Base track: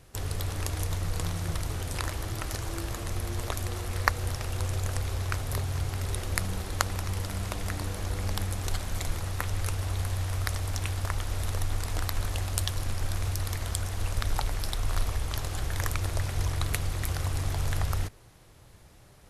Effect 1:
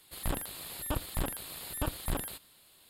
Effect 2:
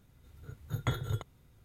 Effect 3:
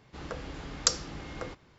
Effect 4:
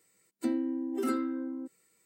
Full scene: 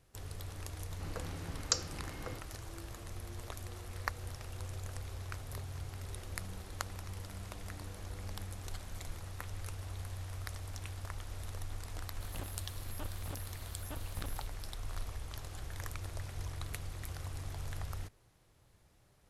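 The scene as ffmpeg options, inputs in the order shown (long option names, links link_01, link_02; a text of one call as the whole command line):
ffmpeg -i bed.wav -i cue0.wav -i cue1.wav -i cue2.wav -filter_complex "[0:a]volume=-12.5dB[link_01];[3:a]bandreject=frequency=3400:width=10,atrim=end=1.78,asetpts=PTS-STARTPTS,volume=-6dB,afade=type=in:duration=0.004:curve=hsin,afade=type=out:start_time=1.776:duration=0.004:curve=hsin,adelay=850[link_02];[1:a]atrim=end=2.89,asetpts=PTS-STARTPTS,volume=-12dB,afade=type=in:duration=0.004:curve=hsin,afade=type=out:start_time=2.886:duration=0.004:curve=hsin,adelay=12090[link_03];[link_01][link_02][link_03]amix=inputs=3:normalize=0" out.wav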